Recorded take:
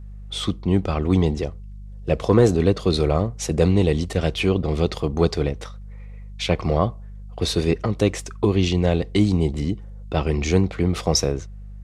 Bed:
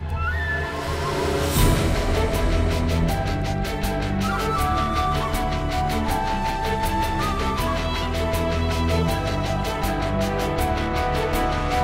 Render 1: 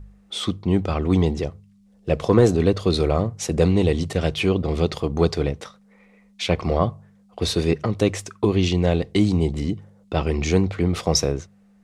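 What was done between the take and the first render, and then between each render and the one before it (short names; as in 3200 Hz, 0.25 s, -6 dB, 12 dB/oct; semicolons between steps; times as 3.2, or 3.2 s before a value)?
de-hum 50 Hz, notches 3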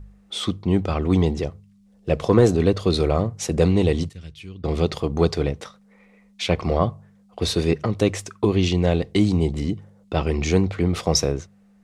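4.09–4.64 passive tone stack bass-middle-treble 6-0-2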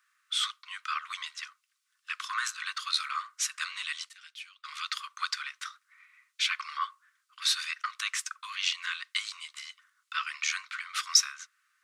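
steep high-pass 1100 Hz 96 dB/oct; bell 1500 Hz +5.5 dB 0.32 oct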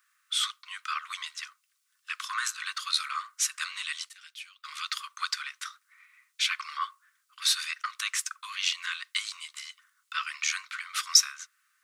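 high shelf 9400 Hz +11 dB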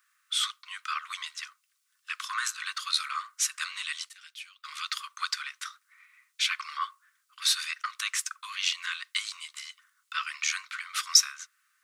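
nothing audible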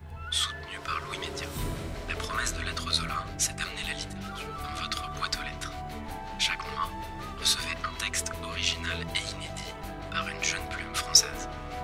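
add bed -15.5 dB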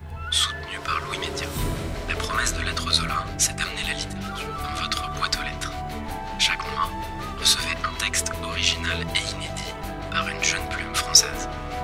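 gain +6.5 dB; limiter -2 dBFS, peak gain reduction 2.5 dB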